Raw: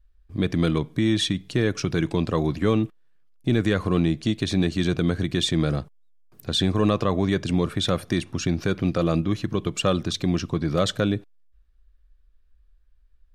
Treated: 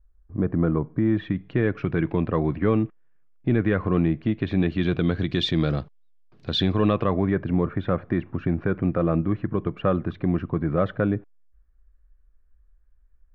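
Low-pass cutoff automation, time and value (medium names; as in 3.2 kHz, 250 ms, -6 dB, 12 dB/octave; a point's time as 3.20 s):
low-pass 24 dB/octave
0.86 s 1.4 kHz
1.52 s 2.3 kHz
4.31 s 2.3 kHz
5.36 s 4.3 kHz
6.63 s 4.3 kHz
7.34 s 1.9 kHz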